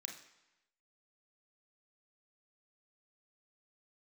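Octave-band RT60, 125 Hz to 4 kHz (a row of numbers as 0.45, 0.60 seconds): 0.95, 0.90, 0.90, 1.0, 1.0, 0.95 seconds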